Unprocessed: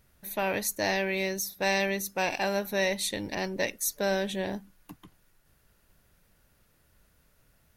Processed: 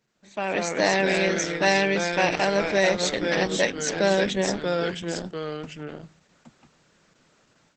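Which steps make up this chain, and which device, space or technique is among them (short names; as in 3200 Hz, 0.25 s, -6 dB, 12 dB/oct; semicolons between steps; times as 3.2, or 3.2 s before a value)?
echoes that change speed 0.143 s, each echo -2 st, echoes 2, each echo -6 dB; video call (HPF 150 Hz 24 dB/oct; AGC gain up to 12.5 dB; gain -3.5 dB; Opus 12 kbps 48000 Hz)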